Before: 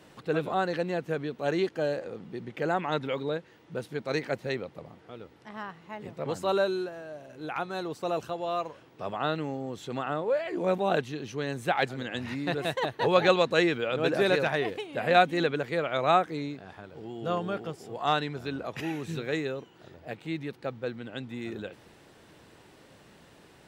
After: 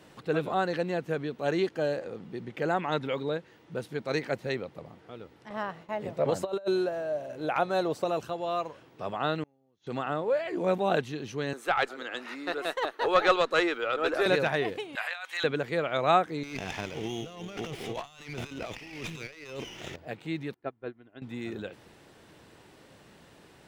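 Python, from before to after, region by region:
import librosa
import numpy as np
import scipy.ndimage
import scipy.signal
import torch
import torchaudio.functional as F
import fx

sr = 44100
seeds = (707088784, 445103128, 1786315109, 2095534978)

y = fx.chain(x, sr, fx.peak_eq(hz=600.0, db=9.0, octaves=0.57),
    fx.over_compress(threshold_db=-26.0, ratio=-0.5),
    fx.gate_hold(open_db=-38.0, close_db=-43.0, hold_ms=71.0, range_db=-21, attack_ms=1.4, release_ms=100.0), at=(5.5, 8.05))
y = fx.chain(y, sr, fx.gate_flip(shuts_db=-32.0, range_db=-34),
    fx.brickwall_lowpass(high_hz=7100.0), at=(9.43, 9.87))
y = fx.chain(y, sr, fx.highpass(hz=310.0, slope=24),
    fx.peak_eq(hz=1300.0, db=10.0, octaves=0.34),
    fx.tube_stage(drive_db=10.0, bias=0.45), at=(11.53, 14.26))
y = fx.chain(y, sr, fx.highpass(hz=1000.0, slope=24),
    fx.over_compress(threshold_db=-35.0, ratio=-1.0), at=(14.95, 15.44))
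y = fx.chain(y, sr, fx.band_shelf(hz=2700.0, db=14.0, octaves=1.1),
    fx.over_compress(threshold_db=-40.0, ratio=-1.0),
    fx.running_max(window=5), at=(16.43, 19.96))
y = fx.chain(y, sr, fx.lowpass(hz=2200.0, slope=12),
    fx.comb(ms=2.9, depth=0.46),
    fx.upward_expand(threshold_db=-46.0, expansion=2.5), at=(20.54, 21.22))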